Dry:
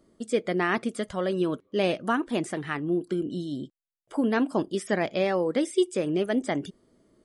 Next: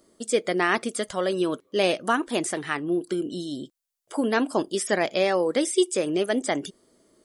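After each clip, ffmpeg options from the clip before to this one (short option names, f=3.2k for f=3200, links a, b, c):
-af "bass=f=250:g=-9,treble=f=4k:g=8,volume=3.5dB"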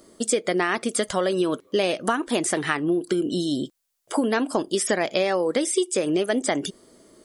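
-af "acompressor=threshold=-28dB:ratio=6,volume=8.5dB"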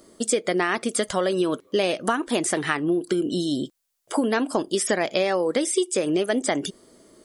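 -af anull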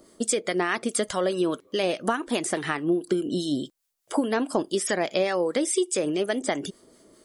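-filter_complex "[0:a]acrossover=split=1000[a][b];[a]aeval=exprs='val(0)*(1-0.5/2+0.5/2*cos(2*PI*4.8*n/s))':c=same[c];[b]aeval=exprs='val(0)*(1-0.5/2-0.5/2*cos(2*PI*4.8*n/s))':c=same[d];[c][d]amix=inputs=2:normalize=0"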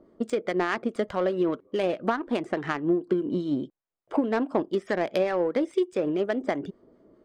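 -af "adynamicsmooth=sensitivity=1:basefreq=1.2k"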